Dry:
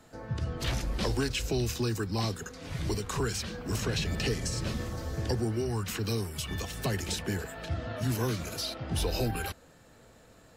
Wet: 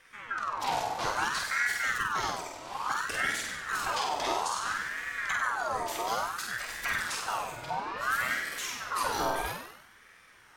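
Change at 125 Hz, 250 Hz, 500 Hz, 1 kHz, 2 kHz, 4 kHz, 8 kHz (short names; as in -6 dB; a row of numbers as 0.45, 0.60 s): -19.5, -12.5, -4.0, +11.0, +10.0, -0.5, +0.5 dB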